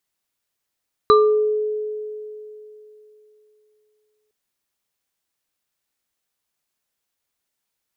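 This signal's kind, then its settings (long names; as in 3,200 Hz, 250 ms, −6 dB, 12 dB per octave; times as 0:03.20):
inharmonic partials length 3.21 s, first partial 426 Hz, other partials 1,190/3,970 Hz, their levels 1/−13.5 dB, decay 3.21 s, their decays 0.48/0.25 s, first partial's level −10 dB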